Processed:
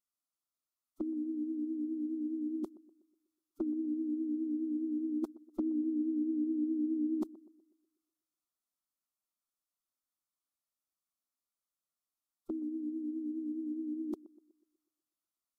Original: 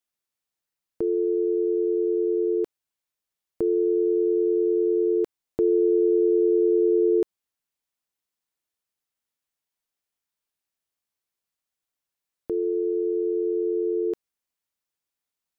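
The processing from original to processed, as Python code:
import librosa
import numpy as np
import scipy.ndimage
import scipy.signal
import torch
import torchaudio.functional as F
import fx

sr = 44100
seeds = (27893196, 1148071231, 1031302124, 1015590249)

p1 = fx.fixed_phaser(x, sr, hz=630.0, stages=6)
p2 = fx.vibrato(p1, sr, rate_hz=4.8, depth_cents=50.0)
p3 = fx.pitch_keep_formants(p2, sr, semitones=-6.0)
p4 = p3 + fx.echo_banded(p3, sr, ms=123, feedback_pct=49, hz=390.0, wet_db=-18.5, dry=0)
y = F.gain(torch.from_numpy(p4), -5.0).numpy()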